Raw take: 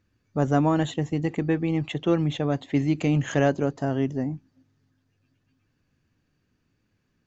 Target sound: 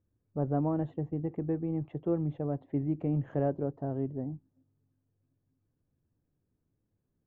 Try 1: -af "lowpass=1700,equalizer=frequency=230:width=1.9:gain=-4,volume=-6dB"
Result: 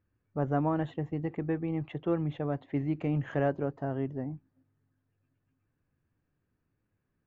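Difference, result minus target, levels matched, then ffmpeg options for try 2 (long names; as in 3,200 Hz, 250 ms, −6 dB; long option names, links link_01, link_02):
2,000 Hz band +12.5 dB
-af "lowpass=680,equalizer=frequency=230:width=1.9:gain=-4,volume=-6dB"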